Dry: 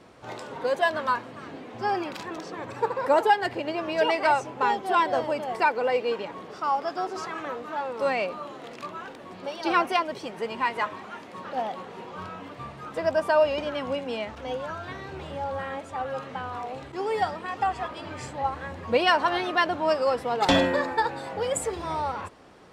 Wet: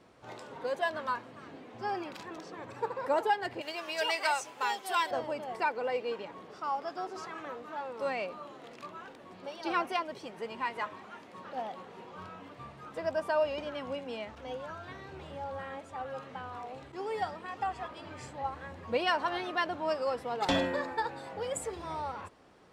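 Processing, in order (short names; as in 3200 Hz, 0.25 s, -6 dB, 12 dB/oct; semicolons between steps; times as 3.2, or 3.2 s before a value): 3.61–5.11 tilt +4.5 dB/oct; gain -8 dB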